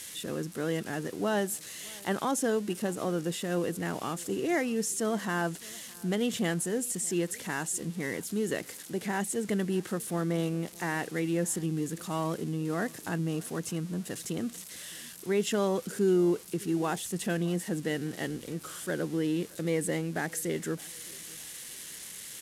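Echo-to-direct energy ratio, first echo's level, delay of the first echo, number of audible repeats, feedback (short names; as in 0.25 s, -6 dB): -23.0 dB, -24.0 dB, 0.614 s, 2, 42%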